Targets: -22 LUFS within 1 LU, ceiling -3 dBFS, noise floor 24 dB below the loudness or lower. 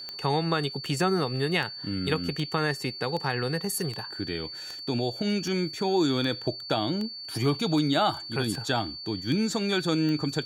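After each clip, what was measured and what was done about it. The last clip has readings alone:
clicks 14; steady tone 4500 Hz; tone level -37 dBFS; loudness -28.0 LUFS; peak -11.0 dBFS; loudness target -22.0 LUFS
-> de-click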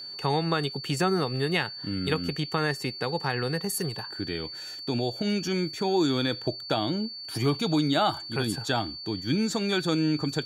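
clicks 0; steady tone 4500 Hz; tone level -37 dBFS
-> notch 4500 Hz, Q 30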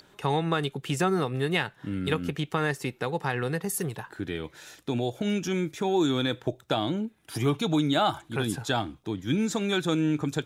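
steady tone none; loudness -28.5 LUFS; peak -11.0 dBFS; loudness target -22.0 LUFS
-> gain +6.5 dB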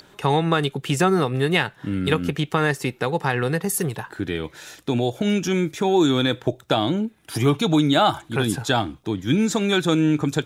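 loudness -22.0 LUFS; peak -4.5 dBFS; noise floor -53 dBFS

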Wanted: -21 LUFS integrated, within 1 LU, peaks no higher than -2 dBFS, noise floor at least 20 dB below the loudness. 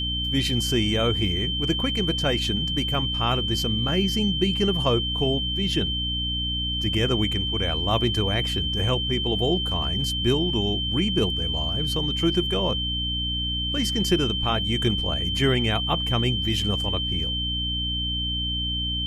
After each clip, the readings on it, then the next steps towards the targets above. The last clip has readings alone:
hum 60 Hz; harmonics up to 300 Hz; hum level -28 dBFS; steady tone 3100 Hz; tone level -26 dBFS; loudness -23.5 LUFS; peak -8.5 dBFS; loudness target -21.0 LUFS
-> de-hum 60 Hz, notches 5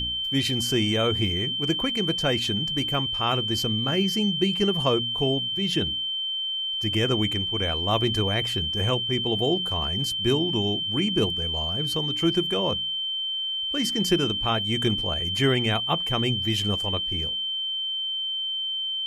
hum none; steady tone 3100 Hz; tone level -26 dBFS
-> notch 3100 Hz, Q 30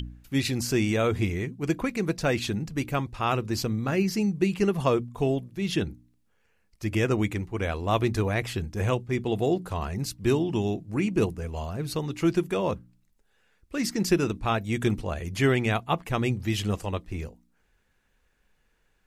steady tone none; loudness -27.5 LUFS; peak -10.0 dBFS; loudness target -21.0 LUFS
-> gain +6.5 dB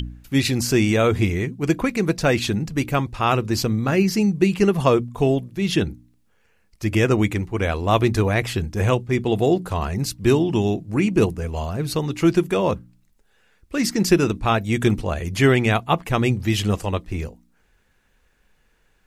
loudness -21.0 LUFS; peak -3.5 dBFS; noise floor -62 dBFS

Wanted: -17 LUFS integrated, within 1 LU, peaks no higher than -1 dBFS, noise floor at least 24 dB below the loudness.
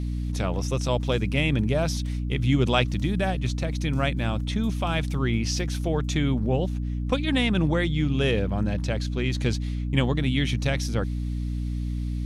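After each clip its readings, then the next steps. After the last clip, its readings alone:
hum 60 Hz; harmonics up to 300 Hz; hum level -26 dBFS; loudness -25.5 LUFS; peak -8.0 dBFS; loudness target -17.0 LUFS
-> de-hum 60 Hz, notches 5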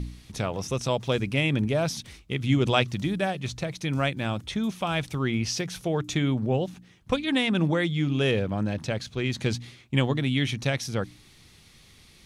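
hum none; loudness -27.0 LUFS; peak -8.0 dBFS; loudness target -17.0 LUFS
-> gain +10 dB; limiter -1 dBFS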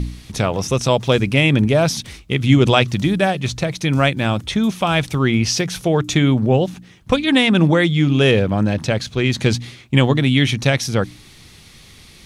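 loudness -17.0 LUFS; peak -1.0 dBFS; noise floor -45 dBFS

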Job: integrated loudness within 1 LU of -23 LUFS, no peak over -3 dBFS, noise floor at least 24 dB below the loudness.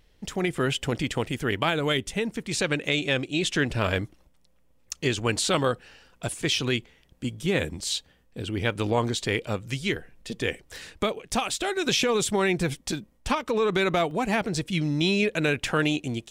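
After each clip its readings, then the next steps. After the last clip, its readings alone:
dropouts 1; longest dropout 1.8 ms; loudness -26.5 LUFS; peak -10.5 dBFS; loudness target -23.0 LUFS
-> interpolate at 14.11, 1.8 ms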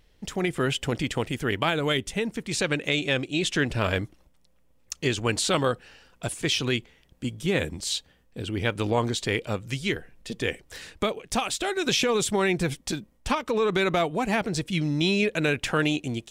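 dropouts 0; loudness -26.5 LUFS; peak -10.5 dBFS; loudness target -23.0 LUFS
-> gain +3.5 dB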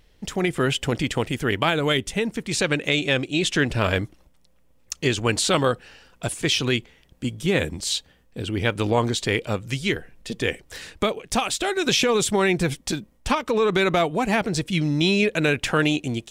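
loudness -23.0 LUFS; peak -7.0 dBFS; noise floor -58 dBFS

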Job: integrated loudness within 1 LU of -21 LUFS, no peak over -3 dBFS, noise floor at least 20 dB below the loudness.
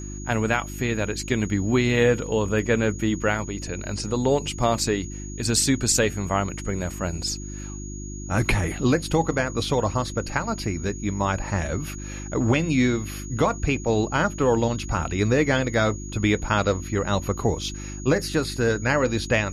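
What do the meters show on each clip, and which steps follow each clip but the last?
hum 50 Hz; harmonics up to 350 Hz; hum level -33 dBFS; steady tone 6700 Hz; tone level -40 dBFS; loudness -24.0 LUFS; peak -7.5 dBFS; loudness target -21.0 LUFS
-> de-hum 50 Hz, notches 7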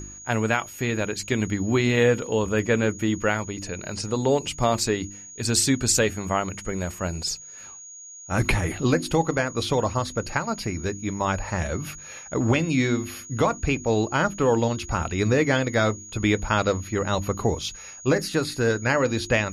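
hum none; steady tone 6700 Hz; tone level -40 dBFS
-> notch 6700 Hz, Q 30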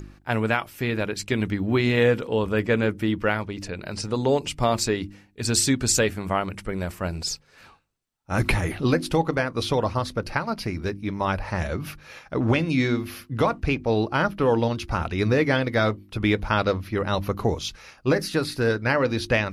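steady tone none; loudness -24.5 LUFS; peak -7.0 dBFS; loudness target -21.0 LUFS
-> gain +3.5 dB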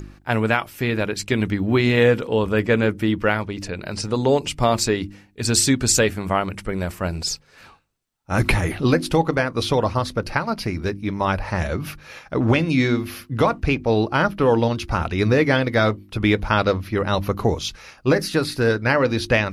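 loudness -21.0 LUFS; peak -3.5 dBFS; noise floor -52 dBFS

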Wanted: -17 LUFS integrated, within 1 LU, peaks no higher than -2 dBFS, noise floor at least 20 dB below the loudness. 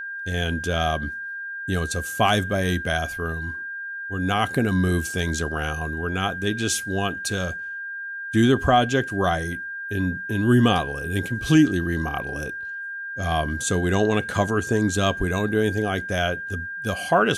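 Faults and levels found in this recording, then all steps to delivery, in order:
steady tone 1600 Hz; tone level -30 dBFS; loudness -24.0 LUFS; peak -6.5 dBFS; loudness target -17.0 LUFS
-> notch 1600 Hz, Q 30; gain +7 dB; limiter -2 dBFS

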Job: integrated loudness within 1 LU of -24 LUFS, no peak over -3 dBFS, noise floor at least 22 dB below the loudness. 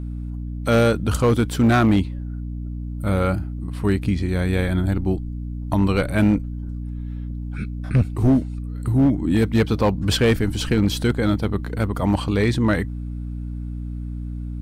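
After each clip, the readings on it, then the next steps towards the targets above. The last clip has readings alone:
clipped 1.4%; flat tops at -11.0 dBFS; hum 60 Hz; harmonics up to 300 Hz; hum level -26 dBFS; loudness -22.0 LUFS; peak -11.0 dBFS; loudness target -24.0 LUFS
-> clip repair -11 dBFS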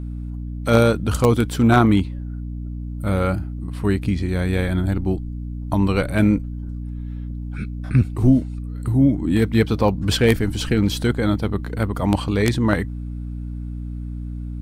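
clipped 0.0%; hum 60 Hz; harmonics up to 300 Hz; hum level -26 dBFS
-> de-hum 60 Hz, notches 5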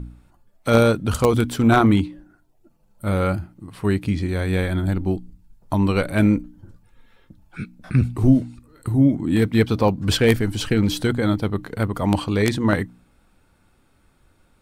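hum none; loudness -20.5 LUFS; peak -2.0 dBFS; loudness target -24.0 LUFS
-> gain -3.5 dB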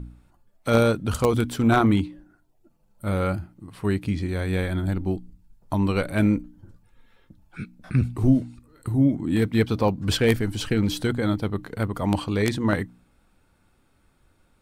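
loudness -24.0 LUFS; peak -5.5 dBFS; noise floor -64 dBFS

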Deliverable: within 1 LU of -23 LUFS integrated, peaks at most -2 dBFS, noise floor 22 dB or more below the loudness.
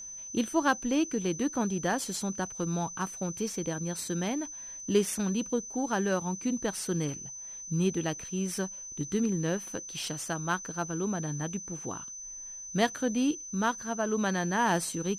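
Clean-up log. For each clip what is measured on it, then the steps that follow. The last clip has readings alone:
steady tone 6100 Hz; tone level -40 dBFS; loudness -31.5 LUFS; peak -12.5 dBFS; loudness target -23.0 LUFS
-> notch 6100 Hz, Q 30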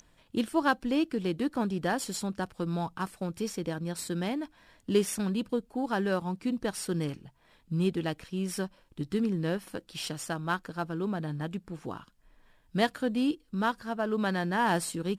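steady tone none; loudness -31.5 LUFS; peak -13.0 dBFS; loudness target -23.0 LUFS
-> gain +8.5 dB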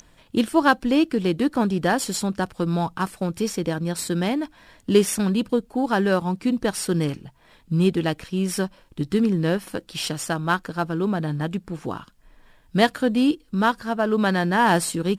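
loudness -23.0 LUFS; peak -4.5 dBFS; noise floor -56 dBFS

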